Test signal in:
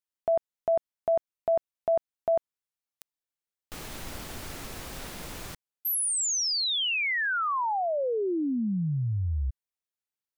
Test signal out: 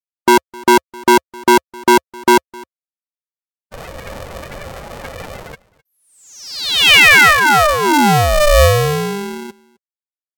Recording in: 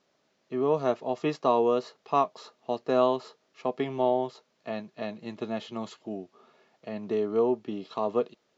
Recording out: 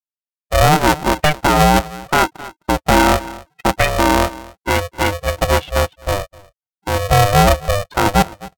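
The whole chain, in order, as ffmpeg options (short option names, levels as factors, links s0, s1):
-af "afftfilt=real='re*gte(hypot(re,im),0.0112)':imag='im*gte(hypot(re,im),0.0112)':win_size=1024:overlap=0.75,afftdn=nr=31:nf=-39,equalizer=f=2000:w=2:g=14.5,acontrast=59,highpass=210,equalizer=f=230:t=q:w=4:g=5,equalizer=f=370:t=q:w=4:g=-4,equalizer=f=770:t=q:w=4:g=-8,equalizer=f=1400:t=q:w=4:g=-9,lowpass=f=2800:w=0.5412,lowpass=f=2800:w=1.3066,aecho=1:1:259:0.0668,alimiter=level_in=5.31:limit=0.891:release=50:level=0:latency=1,aeval=exprs='val(0)*sgn(sin(2*PI*300*n/s))':c=same,volume=0.75"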